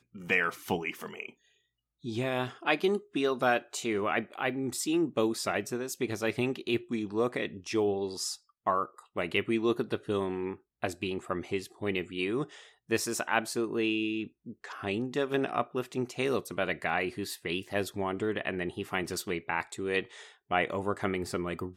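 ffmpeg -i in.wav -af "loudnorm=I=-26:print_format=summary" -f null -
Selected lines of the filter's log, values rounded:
Input Integrated:    -31.9 LUFS
Input True Peak:      -9.1 dBTP
Input LRA:             2.6 LU
Input Threshold:     -42.2 LUFS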